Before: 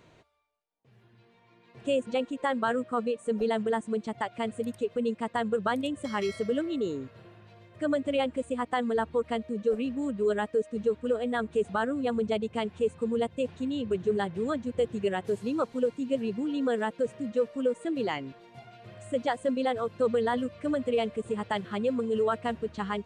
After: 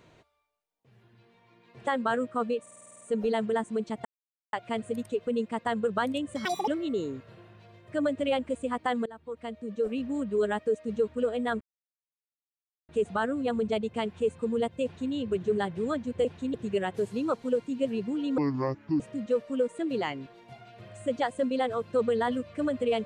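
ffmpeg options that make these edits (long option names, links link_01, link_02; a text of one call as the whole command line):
ffmpeg -i in.wav -filter_complex "[0:a]asplit=19[link_01][link_02][link_03][link_04][link_05][link_06][link_07][link_08][link_09][link_10][link_11][link_12][link_13][link_14][link_15][link_16][link_17][link_18][link_19];[link_01]atrim=end=1.872[link_20];[link_02]atrim=start=2.438:end=3.232[link_21];[link_03]atrim=start=3.178:end=3.232[link_22];[link_04]atrim=start=3.178:end=3.232[link_23];[link_05]atrim=start=3.178:end=3.232[link_24];[link_06]atrim=start=3.178:end=3.232[link_25];[link_07]atrim=start=3.178:end=3.232[link_26];[link_08]atrim=start=3.178:end=3.232[link_27];[link_09]atrim=start=3.178:end=3.232[link_28];[link_10]atrim=start=3.178:end=4.22,asetpts=PTS-STARTPTS,afade=type=out:start_time=1.038:duration=0.004:curve=hsin,apad=pad_dur=0.48[link_29];[link_11]atrim=start=4.22:end=6.144,asetpts=PTS-STARTPTS,afade=type=in:duration=0.004:curve=hsin[link_30];[link_12]atrim=start=6.14:end=6.55,asetpts=PTS-STARTPTS,asetrate=79380,aresample=44100[link_31];[link_13]atrim=start=6.546:end=8.93,asetpts=PTS-STARTPTS,afade=type=out:start_time=2.38:duration=0.004:curve=hsin:silence=0.0707946[link_32];[link_14]atrim=start=8.93:end=11.48,asetpts=PTS-STARTPTS,afade=type=in:duration=1.02:silence=0.0707946,afade=type=out:start_time=2.546:duration=0.004:curve=hsin,apad=pad_dur=1.28[link_33];[link_15]atrim=start=11.48:end=14.842,asetpts=PTS-STARTPTS,afade=type=in:duration=0.004:curve=hsin[link_34];[link_16]atrim=start=13.428:end=13.722[link_35];[link_17]atrim=start=14.838:end=16.684[link_36];[link_18]atrim=start=16.68:end=17.06,asetpts=PTS-STARTPTS,asetrate=26901,aresample=44100,atrim=end_sample=27472,asetpts=PTS-STARTPTS[link_37];[link_19]atrim=start=17.056[link_38];[link_20][link_21]acrossfade=duration=0.004:curve1=hsin:curve2=hsin[link_39];[link_39][link_22]acrossfade=duration=0.004:curve1=hsin:curve2=hsin[link_40];[link_40][link_23]acrossfade=duration=0.004:curve1=hsin:curve2=hsin[link_41];[link_41][link_24]acrossfade=duration=0.004:curve1=hsin:curve2=hsin[link_42];[link_42][link_25]acrossfade=duration=0.004:curve1=hsin:curve2=hsin[link_43];[link_43][link_26]acrossfade=duration=0.004:curve1=hsin:curve2=hsin[link_44];[link_44][link_27]acrossfade=duration=0.004:curve1=hsin:curve2=hsin[link_45];[link_45][link_28]acrossfade=duration=0.004:curve1=hsin:curve2=hsin[link_46];[link_29][link_30]concat=n=2:v=0:a=1[link_47];[link_46][link_47]acrossfade=duration=0.004:curve1=hsin:curve2=hsin[link_48];[link_48][link_31]acrossfade=duration=0.004:curve1=hsin:curve2=hsin[link_49];[link_32][link_33][link_34]concat=n=3:v=0:a=1[link_50];[link_49][link_50]acrossfade=duration=0.004:curve1=hsin:curve2=hsin[link_51];[link_51][link_35]acrossfade=duration=0.004:curve1=hsin:curve2=hsin[link_52];[link_52][link_36]acrossfade=duration=0.004:curve1=hsin:curve2=hsin[link_53];[link_53][link_37]acrossfade=duration=0.004:curve1=hsin:curve2=hsin[link_54];[link_54][link_38]acrossfade=duration=0.004:curve1=hsin:curve2=hsin" out.wav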